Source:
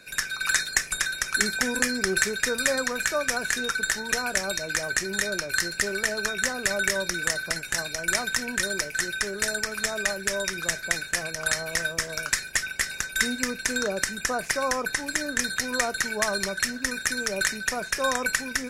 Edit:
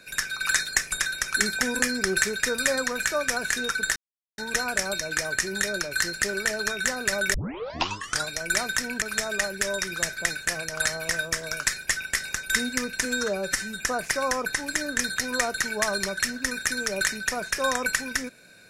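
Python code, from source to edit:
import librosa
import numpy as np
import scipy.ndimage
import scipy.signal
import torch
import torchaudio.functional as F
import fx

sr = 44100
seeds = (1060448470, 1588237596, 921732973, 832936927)

y = fx.edit(x, sr, fx.insert_silence(at_s=3.96, length_s=0.42),
    fx.tape_start(start_s=6.92, length_s=0.94),
    fx.cut(start_s=8.6, length_s=1.08),
    fx.stretch_span(start_s=13.71, length_s=0.52, factor=1.5), tone=tone)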